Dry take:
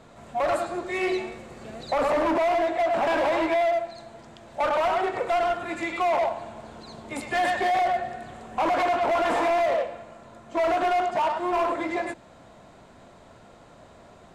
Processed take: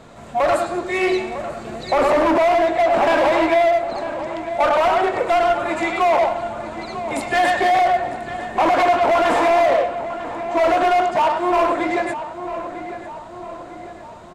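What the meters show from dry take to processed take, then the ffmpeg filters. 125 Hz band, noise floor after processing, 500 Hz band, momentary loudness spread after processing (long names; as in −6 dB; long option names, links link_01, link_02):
+7.5 dB, −37 dBFS, +7.5 dB, 14 LU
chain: -filter_complex "[0:a]asplit=2[link_01][link_02];[link_02]adelay=950,lowpass=frequency=2300:poles=1,volume=-11dB,asplit=2[link_03][link_04];[link_04]adelay=950,lowpass=frequency=2300:poles=1,volume=0.54,asplit=2[link_05][link_06];[link_06]adelay=950,lowpass=frequency=2300:poles=1,volume=0.54,asplit=2[link_07][link_08];[link_08]adelay=950,lowpass=frequency=2300:poles=1,volume=0.54,asplit=2[link_09][link_10];[link_10]adelay=950,lowpass=frequency=2300:poles=1,volume=0.54,asplit=2[link_11][link_12];[link_12]adelay=950,lowpass=frequency=2300:poles=1,volume=0.54[link_13];[link_01][link_03][link_05][link_07][link_09][link_11][link_13]amix=inputs=7:normalize=0,volume=7dB"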